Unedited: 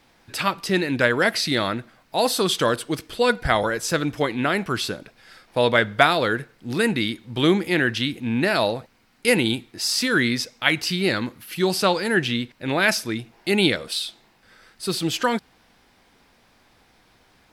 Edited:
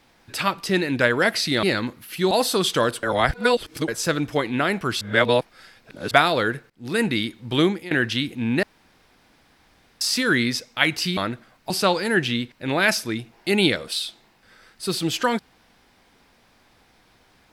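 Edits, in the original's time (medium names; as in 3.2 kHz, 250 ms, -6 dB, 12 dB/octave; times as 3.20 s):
1.63–2.16 s: swap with 11.02–11.70 s
2.88–3.73 s: reverse
4.86–5.96 s: reverse
6.55–6.88 s: fade in, from -22.5 dB
7.45–7.76 s: fade out, to -18.5 dB
8.48–9.86 s: room tone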